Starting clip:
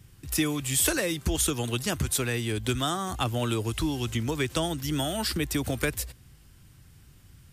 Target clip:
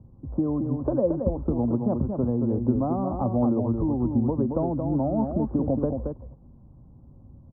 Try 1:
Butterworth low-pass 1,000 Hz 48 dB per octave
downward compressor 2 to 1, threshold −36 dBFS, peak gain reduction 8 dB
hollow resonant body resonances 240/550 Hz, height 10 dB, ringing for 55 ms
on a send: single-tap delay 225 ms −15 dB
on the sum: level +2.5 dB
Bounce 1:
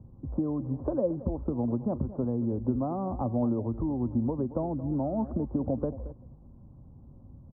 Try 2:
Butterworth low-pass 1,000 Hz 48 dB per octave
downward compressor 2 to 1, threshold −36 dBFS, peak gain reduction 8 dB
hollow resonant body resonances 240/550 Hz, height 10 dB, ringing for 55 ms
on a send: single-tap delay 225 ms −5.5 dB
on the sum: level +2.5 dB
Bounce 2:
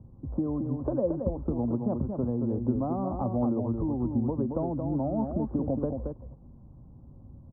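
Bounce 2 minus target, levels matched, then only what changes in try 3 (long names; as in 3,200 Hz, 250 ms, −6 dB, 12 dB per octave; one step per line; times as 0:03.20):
downward compressor: peak gain reduction +4.5 dB
change: downward compressor 2 to 1, threshold −27 dBFS, peak gain reduction 3.5 dB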